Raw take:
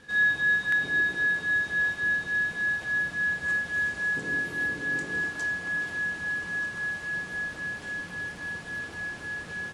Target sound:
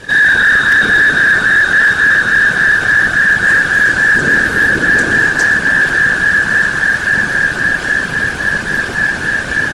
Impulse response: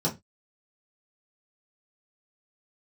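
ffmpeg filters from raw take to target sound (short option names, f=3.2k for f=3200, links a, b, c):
-filter_complex "[0:a]afftfilt=real='hypot(re,im)*cos(2*PI*random(0))':imag='hypot(re,im)*sin(2*PI*random(1))':win_size=512:overlap=0.75,asplit=5[a][b][c][d][e];[b]adelay=124,afreqshift=-140,volume=-13dB[f];[c]adelay=248,afreqshift=-280,volume=-20.3dB[g];[d]adelay=372,afreqshift=-420,volume=-27.7dB[h];[e]adelay=496,afreqshift=-560,volume=-35dB[i];[a][f][g][h][i]amix=inputs=5:normalize=0,apsyclip=30.5dB,volume=-4.5dB"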